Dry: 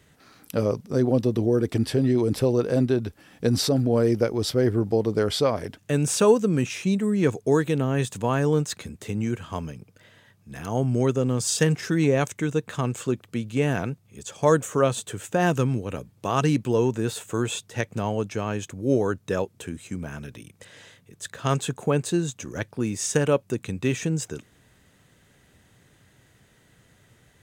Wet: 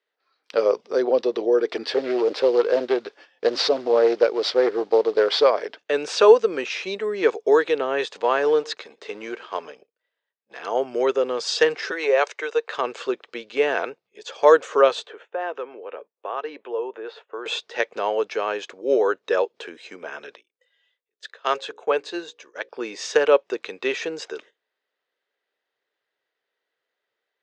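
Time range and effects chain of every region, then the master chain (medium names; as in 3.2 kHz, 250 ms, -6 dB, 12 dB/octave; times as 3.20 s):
1.94–5.44 s: CVSD coder 64 kbps + loudspeaker Doppler distortion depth 0.35 ms
8.12–10.63 s: companding laws mixed up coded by A + delay 116 ms -24 dB
11.91–12.74 s: high-pass 420 Hz 24 dB/octave + band-stop 3.4 kHz, Q 13
15.07–17.46 s: high-pass 400 Hz + compression 1.5:1, threshold -37 dBFS + tape spacing loss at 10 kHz 32 dB
20.35–22.69 s: bass shelf 360 Hz -5.5 dB + hum notches 60/120/180/240/300/360/420/480/540 Hz + upward expansion, over -38 dBFS
whole clip: gate -47 dBFS, range -12 dB; spectral noise reduction 13 dB; Chebyshev band-pass 430–4700 Hz, order 3; trim +6.5 dB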